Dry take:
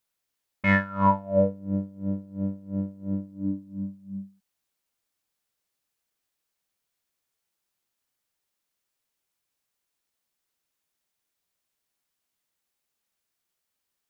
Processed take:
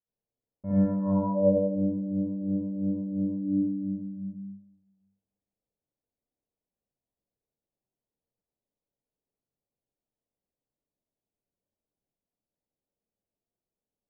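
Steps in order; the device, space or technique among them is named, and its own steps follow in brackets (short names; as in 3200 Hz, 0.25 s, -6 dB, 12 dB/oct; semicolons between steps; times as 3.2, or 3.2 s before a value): next room (LPF 660 Hz 24 dB/oct; reverb RT60 0.90 s, pre-delay 49 ms, DRR -9.5 dB); gain -8.5 dB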